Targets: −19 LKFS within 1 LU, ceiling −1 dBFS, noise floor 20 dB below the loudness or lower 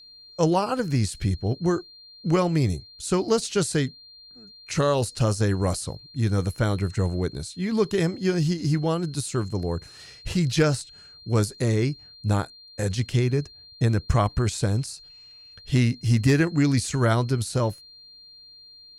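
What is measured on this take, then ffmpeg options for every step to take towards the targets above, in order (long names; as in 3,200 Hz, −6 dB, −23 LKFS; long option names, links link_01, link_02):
interfering tone 4,200 Hz; level of the tone −46 dBFS; integrated loudness −25.0 LKFS; sample peak −9.0 dBFS; target loudness −19.0 LKFS
→ -af "bandreject=frequency=4200:width=30"
-af "volume=6dB"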